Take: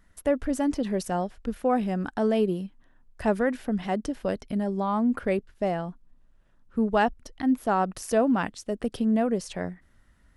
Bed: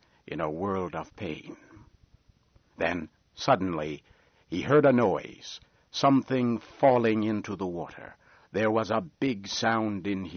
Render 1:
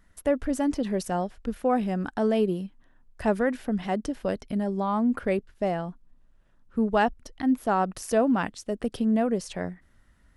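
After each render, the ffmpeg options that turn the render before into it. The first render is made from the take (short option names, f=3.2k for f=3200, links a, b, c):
-af anull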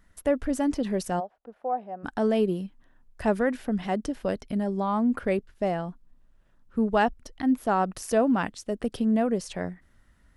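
-filter_complex "[0:a]asplit=3[a][b][c];[a]afade=t=out:st=1.19:d=0.02[d];[b]bandpass=f=720:t=q:w=2.8,afade=t=in:st=1.19:d=0.02,afade=t=out:st=2.03:d=0.02[e];[c]afade=t=in:st=2.03:d=0.02[f];[d][e][f]amix=inputs=3:normalize=0"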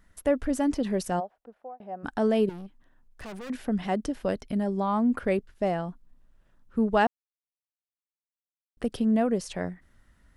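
-filter_complex "[0:a]asettb=1/sr,asplit=3[a][b][c];[a]atrim=end=2.494[d];[b]atrim=start=2.49:end=3.5,asetpts=PTS-STARTPTS,afade=t=in:d=0.004:c=qsin,afade=t=out:st=1.006:d=0.004:c=qsin,aeval=exprs='(tanh(79.4*val(0)+0.5)-tanh(0.5))/79.4':c=same[e];[c]atrim=start=3.496[f];[d][e]acrossfade=d=0.004:c1=hsin:c2=qsin[g];[g][f]acrossfade=d=0.004:c1=qsin:c2=hsin,asplit=4[h][i][j][k];[h]atrim=end=1.8,asetpts=PTS-STARTPTS,afade=t=out:st=1.12:d=0.68:c=qsin[l];[i]atrim=start=1.8:end=7.07,asetpts=PTS-STARTPTS,afade=t=in:d=0.004:c=hsin,afade=t=out:st=5.266:d=0.004:c=hsin[m];[j]atrim=start=7.07:end=8.77,asetpts=PTS-STARTPTS,volume=0[n];[k]atrim=start=8.77,asetpts=PTS-STARTPTS,afade=t=in:d=0.004:c=hsin[o];[l][m][n][o]concat=n=4:v=0:a=1"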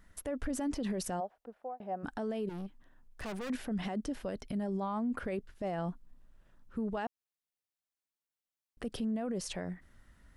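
-af "acompressor=threshold=-25dB:ratio=6,alimiter=level_in=4dB:limit=-24dB:level=0:latency=1:release=33,volume=-4dB"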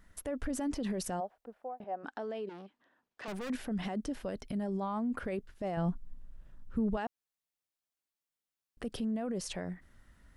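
-filter_complex "[0:a]asettb=1/sr,asplit=3[a][b][c];[a]atrim=end=1.844[d];[b]atrim=start=1.84:end=3.28,asetpts=PTS-STARTPTS,afade=t=in:d=0.004:c=qsin,afade=t=out:st=1.436:d=0.004:c=qsin,highpass=340,lowpass=5k[e];[c]atrim=start=3.276[f];[d][e]acrossfade=d=0.004:c1=hsin:c2=qsin[g];[g][f]acrossfade=d=0.004:c1=qsin:c2=hsin,asettb=1/sr,asplit=3[h][i][j];[h]atrim=end=5.774[k];[i]atrim=start=5.77:end=6.97,asetpts=PTS-STARTPTS,afade=t=in:d=0.004:c=qsin,afade=t=out:st=1.196:d=0.004:c=qsin,lowshelf=f=180:g=11.5[l];[j]atrim=start=6.966[m];[k][l]acrossfade=d=0.004:c1=hsin:c2=qsin[n];[n][m]acrossfade=d=0.004:c1=qsin:c2=hsin"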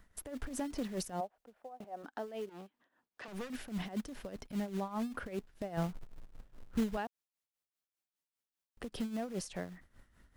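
-filter_complex "[0:a]acrossover=split=410|2200[a][b][c];[a]acrusher=bits=3:mode=log:mix=0:aa=0.000001[d];[d][b][c]amix=inputs=3:normalize=0,tremolo=f=5:d=0.74"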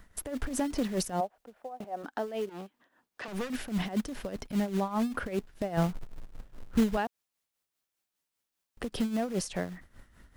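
-af "volume=7.5dB"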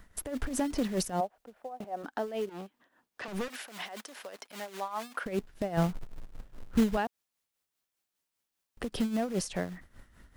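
-filter_complex "[0:a]asettb=1/sr,asplit=3[a][b][c];[a]atrim=end=3.484[d];[b]atrim=start=3.48:end=5.26,asetpts=PTS-STARTPTS,afade=t=in:d=0.004:c=qsin,afade=t=out:st=1.776:d=0.004:c=qsin,highpass=700[e];[c]atrim=start=5.256[f];[d][e]acrossfade=d=0.004:c1=hsin:c2=qsin[g];[g][f]acrossfade=d=0.004:c1=qsin:c2=hsin"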